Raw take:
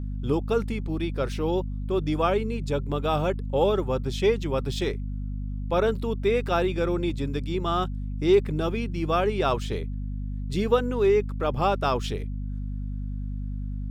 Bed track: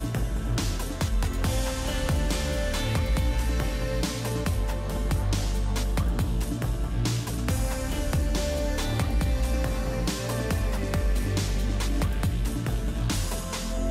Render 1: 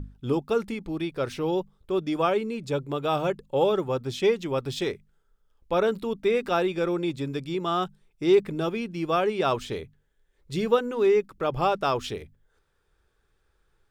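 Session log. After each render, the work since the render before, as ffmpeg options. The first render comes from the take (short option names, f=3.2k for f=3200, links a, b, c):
-af "bandreject=f=50:t=h:w=6,bandreject=f=100:t=h:w=6,bandreject=f=150:t=h:w=6,bandreject=f=200:t=h:w=6,bandreject=f=250:t=h:w=6"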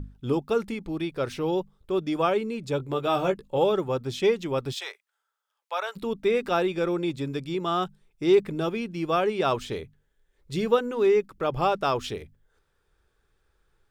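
-filter_complex "[0:a]asettb=1/sr,asplit=3[a][b][c];[a]atrim=end=2.784[d];[b]atrim=start=2.78:end=3.58,asetpts=PTS-STARTPTS,afade=t=in:d=0.004:c=qsin,afade=t=out:st=0.796:d=0.004:c=qsin,asplit=2[e][f];[f]adelay=16,volume=-5dB[g];[e][g]amix=inputs=2:normalize=0,atrim=end_sample=35280[h];[c]atrim=start=3.576[i];[d][h]acrossfade=d=0.004:c1=hsin:c2=qsin[j];[j][i]acrossfade=d=0.004:c1=qsin:c2=hsin,asplit=3[k][l][m];[k]afade=t=out:st=4.72:d=0.02[n];[l]highpass=f=730:w=0.5412,highpass=f=730:w=1.3066,afade=t=in:st=4.72:d=0.02,afade=t=out:st=5.95:d=0.02[o];[m]afade=t=in:st=5.95:d=0.02[p];[n][o][p]amix=inputs=3:normalize=0"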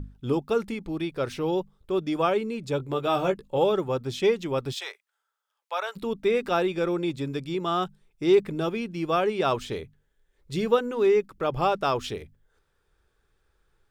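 -af anull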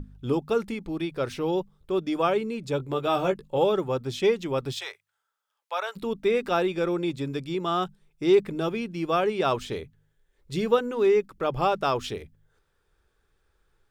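-af "bandreject=f=50.86:t=h:w=4,bandreject=f=101.72:t=h:w=4,bandreject=f=152.58:t=h:w=4"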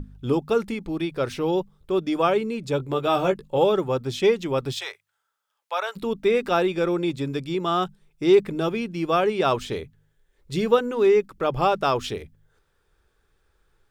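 -af "volume=3dB"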